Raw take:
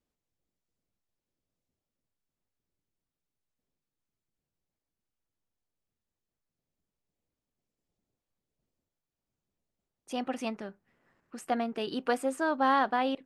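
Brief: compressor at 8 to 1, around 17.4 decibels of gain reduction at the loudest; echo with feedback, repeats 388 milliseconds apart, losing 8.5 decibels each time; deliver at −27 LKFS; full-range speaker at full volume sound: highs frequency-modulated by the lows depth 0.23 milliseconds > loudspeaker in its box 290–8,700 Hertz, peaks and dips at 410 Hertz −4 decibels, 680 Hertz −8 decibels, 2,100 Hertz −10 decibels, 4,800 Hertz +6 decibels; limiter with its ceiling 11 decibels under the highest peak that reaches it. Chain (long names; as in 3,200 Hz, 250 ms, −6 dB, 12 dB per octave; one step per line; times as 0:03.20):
downward compressor 8 to 1, threshold −39 dBFS
brickwall limiter −39 dBFS
repeating echo 388 ms, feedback 38%, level −8.5 dB
highs frequency-modulated by the lows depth 0.23 ms
loudspeaker in its box 290–8,700 Hz, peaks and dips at 410 Hz −4 dB, 680 Hz −8 dB, 2,100 Hz −10 dB, 4,800 Hz +6 dB
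level +25.5 dB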